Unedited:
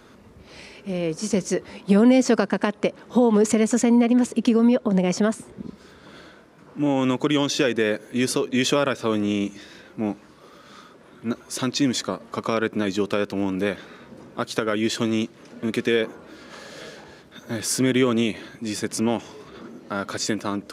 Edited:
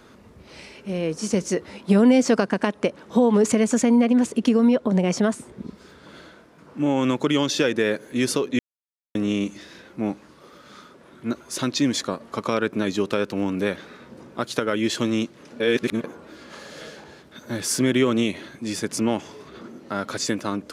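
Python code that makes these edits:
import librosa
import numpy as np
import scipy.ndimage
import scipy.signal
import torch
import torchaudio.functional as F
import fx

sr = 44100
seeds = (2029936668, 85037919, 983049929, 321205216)

y = fx.edit(x, sr, fx.silence(start_s=8.59, length_s=0.56),
    fx.reverse_span(start_s=15.6, length_s=0.44), tone=tone)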